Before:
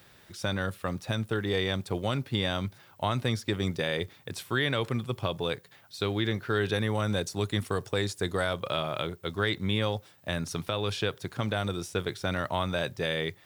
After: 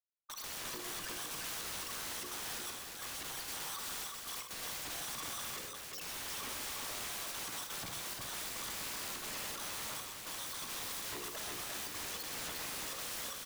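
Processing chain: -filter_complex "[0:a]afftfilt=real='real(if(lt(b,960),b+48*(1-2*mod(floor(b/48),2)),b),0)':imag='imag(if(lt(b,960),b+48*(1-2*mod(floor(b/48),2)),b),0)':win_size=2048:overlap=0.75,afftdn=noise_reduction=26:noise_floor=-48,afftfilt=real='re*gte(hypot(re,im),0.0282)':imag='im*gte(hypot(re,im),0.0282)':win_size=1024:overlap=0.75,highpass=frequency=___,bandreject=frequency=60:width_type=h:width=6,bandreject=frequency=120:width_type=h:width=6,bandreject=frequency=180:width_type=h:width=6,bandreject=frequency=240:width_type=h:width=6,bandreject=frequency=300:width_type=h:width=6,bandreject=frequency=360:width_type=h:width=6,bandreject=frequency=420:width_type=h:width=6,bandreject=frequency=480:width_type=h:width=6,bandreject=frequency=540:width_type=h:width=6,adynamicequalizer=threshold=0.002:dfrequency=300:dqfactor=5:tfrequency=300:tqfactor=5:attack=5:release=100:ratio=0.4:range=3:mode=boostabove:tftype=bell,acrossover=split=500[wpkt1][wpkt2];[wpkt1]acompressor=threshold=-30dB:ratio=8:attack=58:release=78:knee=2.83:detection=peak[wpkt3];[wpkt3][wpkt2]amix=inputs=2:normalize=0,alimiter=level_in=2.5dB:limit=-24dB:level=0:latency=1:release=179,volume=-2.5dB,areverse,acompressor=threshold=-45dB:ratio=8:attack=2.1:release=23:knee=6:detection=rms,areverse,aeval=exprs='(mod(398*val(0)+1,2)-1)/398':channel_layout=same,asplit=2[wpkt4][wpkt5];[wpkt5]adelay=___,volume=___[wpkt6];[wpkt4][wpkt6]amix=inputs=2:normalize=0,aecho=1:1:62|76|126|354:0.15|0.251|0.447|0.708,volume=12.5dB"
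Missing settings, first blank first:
78, 48, -11.5dB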